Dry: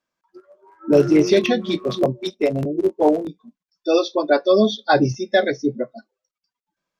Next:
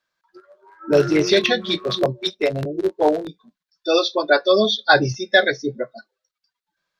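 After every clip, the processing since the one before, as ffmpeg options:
-af "equalizer=f=250:t=o:w=0.67:g=-8,equalizer=f=1.6k:t=o:w=0.67:g=8,equalizer=f=4k:t=o:w=0.67:g=9"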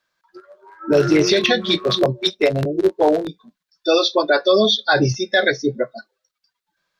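-af "alimiter=level_in=9.5dB:limit=-1dB:release=50:level=0:latency=1,volume=-5dB"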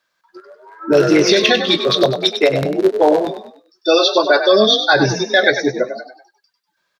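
-filter_complex "[0:a]lowshelf=f=130:g=-9,asplit=5[a][b][c][d][e];[b]adelay=98,afreqshift=44,volume=-9dB[f];[c]adelay=196,afreqshift=88,volume=-17dB[g];[d]adelay=294,afreqshift=132,volume=-24.9dB[h];[e]adelay=392,afreqshift=176,volume=-32.9dB[i];[a][f][g][h][i]amix=inputs=5:normalize=0,volume=3.5dB"

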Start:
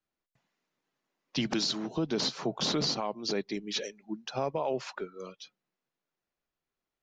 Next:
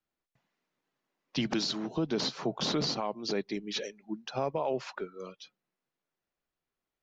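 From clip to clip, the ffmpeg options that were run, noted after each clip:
-af "highshelf=f=7.8k:g=-10"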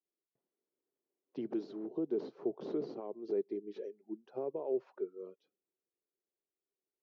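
-af "bandpass=f=390:t=q:w=4.1:csg=0,volume=1.5dB"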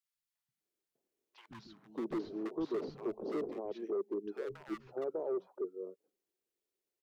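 -filter_complex "[0:a]asoftclip=type=hard:threshold=-34.5dB,acrossover=split=170|1100[a][b][c];[a]adelay=130[d];[b]adelay=600[e];[d][e][c]amix=inputs=3:normalize=0,volume=3.5dB"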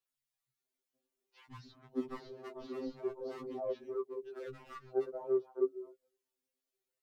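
-af "aphaser=in_gain=1:out_gain=1:delay=3.7:decay=0.54:speed=0.54:type=sinusoidal,afftfilt=real='re*2.45*eq(mod(b,6),0)':imag='im*2.45*eq(mod(b,6),0)':win_size=2048:overlap=0.75"

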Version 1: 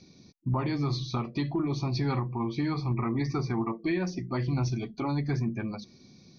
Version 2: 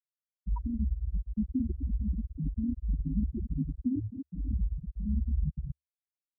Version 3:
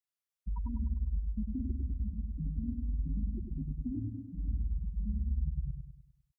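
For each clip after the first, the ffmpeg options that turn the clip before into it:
-af "aecho=1:1:85|181|256|557|788:0.119|0.178|0.447|0.355|0.266,afftfilt=real='re*gte(hypot(re,im),0.282)':imag='im*gte(hypot(re,im),0.282)':win_size=1024:overlap=0.75,afreqshift=-75"
-af "equalizer=f=290:w=0.72:g=-6.5,acompressor=threshold=-32dB:ratio=6,aecho=1:1:100|200|300|400|500|600:0.562|0.259|0.119|0.0547|0.0252|0.0116"

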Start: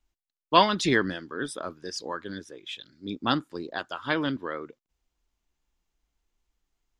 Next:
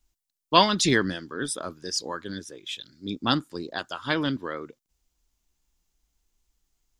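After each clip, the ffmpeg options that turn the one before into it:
-af "bass=f=250:g=4,treble=f=4k:g=10"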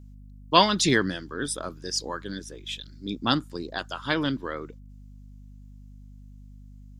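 -af "aeval=exprs='val(0)+0.00562*(sin(2*PI*50*n/s)+sin(2*PI*2*50*n/s)/2+sin(2*PI*3*50*n/s)/3+sin(2*PI*4*50*n/s)/4+sin(2*PI*5*50*n/s)/5)':c=same"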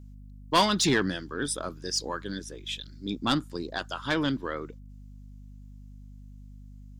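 -af "asoftclip=type=tanh:threshold=-15dB"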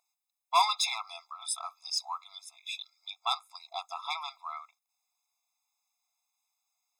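-af "afftfilt=real='re*eq(mod(floor(b*sr/1024/680),2),1)':imag='im*eq(mod(floor(b*sr/1024/680),2),1)':win_size=1024:overlap=0.75"

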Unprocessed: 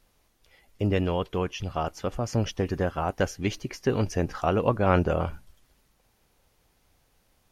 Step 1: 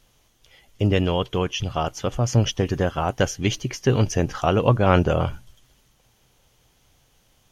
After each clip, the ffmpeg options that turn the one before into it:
-af "equalizer=f=125:t=o:w=0.33:g=8,equalizer=f=3.15k:t=o:w=0.33:g=8,equalizer=f=6.3k:t=o:w=0.33:g=7,volume=4dB"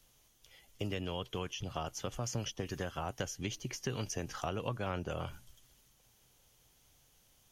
-filter_complex "[0:a]acrossover=split=140|1100[a][b][c];[a]acompressor=threshold=-36dB:ratio=4[d];[b]acompressor=threshold=-29dB:ratio=4[e];[c]acompressor=threshold=-35dB:ratio=4[f];[d][e][f]amix=inputs=3:normalize=0,highshelf=f=5.5k:g=9.5,volume=-9dB"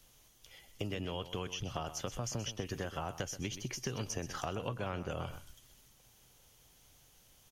-af "acompressor=threshold=-41dB:ratio=2,aecho=1:1:127:0.237,volume=3.5dB"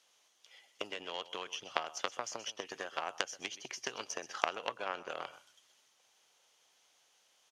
-af "aeval=exprs='0.106*(cos(1*acos(clip(val(0)/0.106,-1,1)))-cos(1*PI/2))+0.0299*(cos(3*acos(clip(val(0)/0.106,-1,1)))-cos(3*PI/2))':c=same,highpass=590,lowpass=6.7k,volume=14.5dB"

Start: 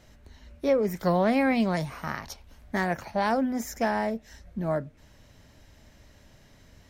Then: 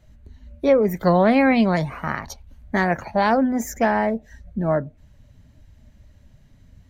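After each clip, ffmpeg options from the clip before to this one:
-af "bandreject=f=5.3k:w=9.1,afftdn=nr=14:nf=-47,volume=7dB"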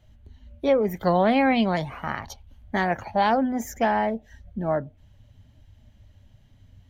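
-af "equalizer=f=100:t=o:w=0.33:g=8,equalizer=f=160:t=o:w=0.33:g=-3,equalizer=f=800:t=o:w=0.33:g=5,equalizer=f=3.15k:t=o:w=0.33:g=9,equalizer=f=8k:t=o:w=0.33:g=-3,volume=-4.5dB"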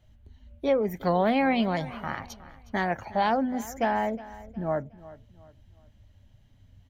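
-af "aecho=1:1:363|726|1089:0.126|0.0453|0.0163,volume=-3.5dB"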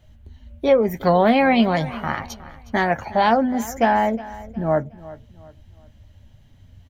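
-filter_complex "[0:a]asplit=2[a][b];[b]adelay=13,volume=-11.5dB[c];[a][c]amix=inputs=2:normalize=0,volume=7.5dB"

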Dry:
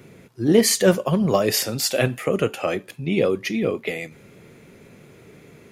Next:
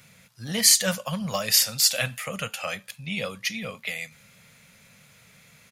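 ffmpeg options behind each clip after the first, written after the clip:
-af "firequalizer=gain_entry='entry(200,0);entry(350,-23);entry(520,-2);entry(1300,6);entry(4200,13)':delay=0.05:min_phase=1,volume=-9dB"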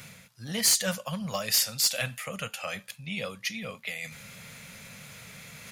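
-af "areverse,acompressor=mode=upward:threshold=-30dB:ratio=2.5,areverse,volume=12.5dB,asoftclip=hard,volume=-12.5dB,volume=-4dB"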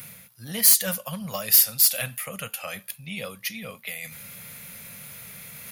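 -af "aexciter=amount=6.5:drive=3.3:freq=9.9k"

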